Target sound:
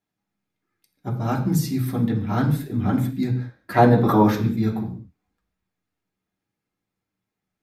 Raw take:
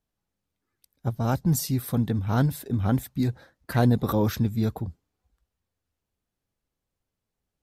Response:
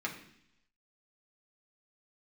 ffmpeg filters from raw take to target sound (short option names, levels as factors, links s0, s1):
-filter_complex "[0:a]asettb=1/sr,asplit=3[s0][s1][s2];[s0]atrim=end=3.744[s3];[s1]atrim=start=3.74:end=4.31,asetpts=PTS-STARTPTS,afade=t=in:d=0.004:c=qsin,afade=t=out:st=0.566:d=0.004:c=qsin,equalizer=f=770:t=o:w=2.5:g=9[s4];[s2]atrim=start=4.306[s5];[s3][s4]acrossfade=d=0.004:c1=hsin:c2=qsin[s6];[s6][s5]acrossfade=d=0.004:c1=qsin:c2=hsin[s7];[1:a]atrim=start_sample=2205,afade=t=out:st=0.26:d=0.01,atrim=end_sample=11907[s8];[s7][s8]afir=irnorm=-1:irlink=0"